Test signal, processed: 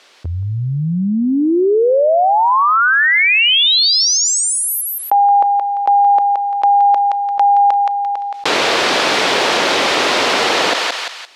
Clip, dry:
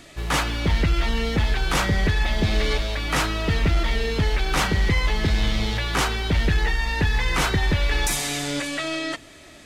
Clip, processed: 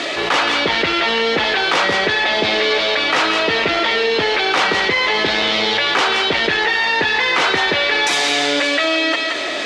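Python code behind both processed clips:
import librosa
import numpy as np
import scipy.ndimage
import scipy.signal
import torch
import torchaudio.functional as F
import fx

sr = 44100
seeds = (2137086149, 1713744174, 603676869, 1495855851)

p1 = scipy.signal.sosfilt(scipy.signal.cheby1(2, 1.0, [430.0, 4100.0], 'bandpass', fs=sr, output='sos'), x)
p2 = p1 + fx.echo_thinned(p1, sr, ms=172, feedback_pct=15, hz=870.0, wet_db=-8.5, dry=0)
p3 = fx.env_flatten(p2, sr, amount_pct=70)
y = p3 * 10.0 ** (7.0 / 20.0)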